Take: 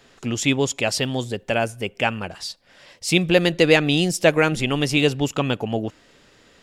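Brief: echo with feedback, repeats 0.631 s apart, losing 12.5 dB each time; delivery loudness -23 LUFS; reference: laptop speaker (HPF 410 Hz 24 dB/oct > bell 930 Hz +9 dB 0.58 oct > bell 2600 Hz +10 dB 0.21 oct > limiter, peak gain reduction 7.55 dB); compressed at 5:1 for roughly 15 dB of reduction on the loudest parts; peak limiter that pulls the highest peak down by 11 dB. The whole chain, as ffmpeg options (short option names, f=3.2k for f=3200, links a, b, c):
-af "acompressor=threshold=-28dB:ratio=5,alimiter=level_in=1dB:limit=-24dB:level=0:latency=1,volume=-1dB,highpass=f=410:w=0.5412,highpass=f=410:w=1.3066,equalizer=f=930:t=o:w=0.58:g=9,equalizer=f=2.6k:t=o:w=0.21:g=10,aecho=1:1:631|1262|1893:0.237|0.0569|0.0137,volume=14.5dB,alimiter=limit=-12.5dB:level=0:latency=1"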